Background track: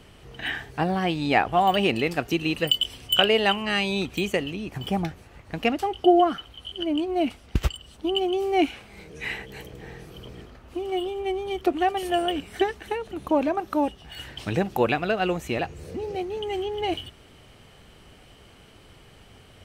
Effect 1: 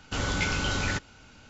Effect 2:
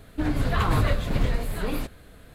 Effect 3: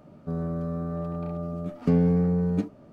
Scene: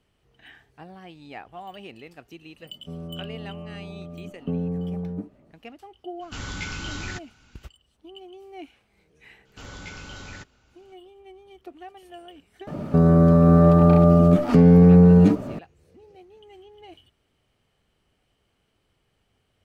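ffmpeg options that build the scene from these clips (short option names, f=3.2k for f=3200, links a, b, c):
-filter_complex "[3:a]asplit=2[a][b];[1:a]asplit=2[c][d];[0:a]volume=-19.5dB[e];[a]lowpass=1k[f];[c]equalizer=f=570:t=o:w=1:g=-7.5[g];[b]alimiter=level_in=24dB:limit=-1dB:release=50:level=0:latency=1[h];[f]atrim=end=2.92,asetpts=PTS-STARTPTS,volume=-6.5dB,afade=t=in:d=0.004:c=hsin,afade=t=out:st=2.916:d=0.004:c=hsin,adelay=2600[i];[g]atrim=end=1.49,asetpts=PTS-STARTPTS,volume=-4.5dB,afade=t=in:d=0.02,afade=t=out:st=1.47:d=0.02,adelay=6200[j];[d]atrim=end=1.49,asetpts=PTS-STARTPTS,volume=-12dB,afade=t=in:d=0.004:c=hsin,afade=t=out:st=1.486:d=0.004:c=hsin,adelay=9450[k];[h]atrim=end=2.92,asetpts=PTS-STARTPTS,volume=-6dB,afade=t=in:d=0.004:c=hsin,afade=t=out:st=2.916:d=0.004:c=hsin,adelay=12670[l];[e][i][j][k][l]amix=inputs=5:normalize=0"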